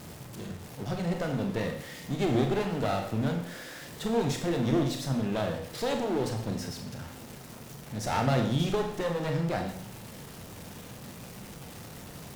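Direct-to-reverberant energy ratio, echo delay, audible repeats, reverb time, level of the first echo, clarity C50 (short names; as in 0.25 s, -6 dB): 3.0 dB, none, none, 0.70 s, none, 7.5 dB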